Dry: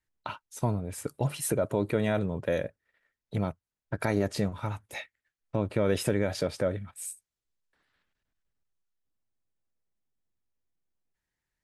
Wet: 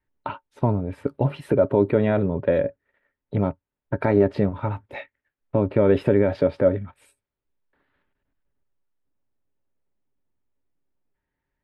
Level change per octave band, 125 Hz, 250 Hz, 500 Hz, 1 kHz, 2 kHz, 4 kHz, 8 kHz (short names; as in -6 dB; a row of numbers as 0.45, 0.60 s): +6.5 dB, +8.0 dB, +9.5 dB, +6.5 dB, +2.5 dB, n/a, under -20 dB